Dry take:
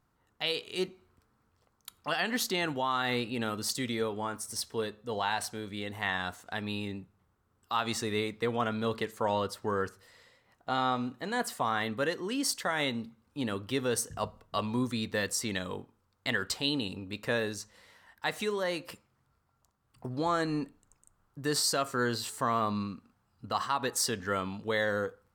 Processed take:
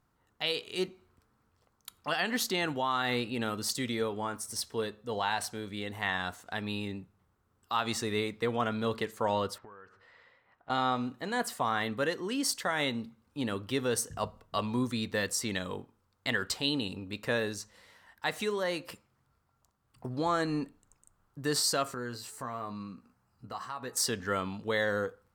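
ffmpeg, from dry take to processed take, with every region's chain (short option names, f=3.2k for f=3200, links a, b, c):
-filter_complex "[0:a]asettb=1/sr,asplit=3[a][b][c];[a]atrim=end=9.584[d];[b]atrim=start=9.58:end=10.7,asetpts=PTS-STARTPTS,afade=t=in:d=0.004:c=qsin,afade=t=out:st=1.116:d=0.004:c=qsin,lowpass=1.8k,tiltshelf=f=720:g=-6.5,acompressor=threshold=-47dB:ratio=12:attack=3.2:release=140:knee=1:detection=peak[e];[c]atrim=start=10.696[f];[d][e]acrossfade=d=0.004:c1=hsin:c2=qsin[g];[g][f]acrossfade=d=0.004:c1=qsin:c2=hsin,asettb=1/sr,asplit=3[h][i][j];[h]atrim=end=21.944[k];[i]atrim=start=21.94:end=23.97,asetpts=PTS-STARTPTS,afade=t=in:d=0.004:c=qsin,afade=t=out:st=2.026:d=0.004:c=qsin,acompressor=threshold=-51dB:ratio=1.5:attack=3.2:release=140:knee=1:detection=peak,equalizer=f=3.4k:w=3.3:g=-7.5,asplit=2[l][m];[m]adelay=16,volume=-8.5dB[n];[l][n]amix=inputs=2:normalize=0,atrim=end_sample=89523[o];[j]atrim=start=23.966[p];[k][o]acrossfade=d=0.004:c1=hsin:c2=qsin[q];[q][p]acrossfade=d=0.004:c1=qsin:c2=hsin"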